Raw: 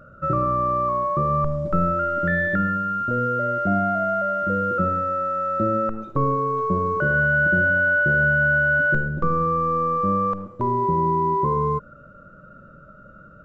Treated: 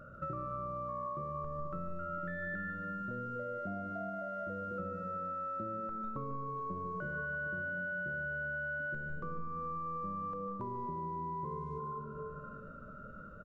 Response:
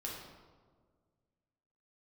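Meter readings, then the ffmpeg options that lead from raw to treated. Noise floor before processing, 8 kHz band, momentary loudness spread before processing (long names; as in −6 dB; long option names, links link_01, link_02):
−47 dBFS, can't be measured, 6 LU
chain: -filter_complex "[0:a]asplit=2[link_01][link_02];[link_02]aecho=1:1:4.5:0.68[link_03];[1:a]atrim=start_sample=2205,adelay=147[link_04];[link_03][link_04]afir=irnorm=-1:irlink=0,volume=-6dB[link_05];[link_01][link_05]amix=inputs=2:normalize=0,acompressor=threshold=-34dB:ratio=5,volume=-5dB"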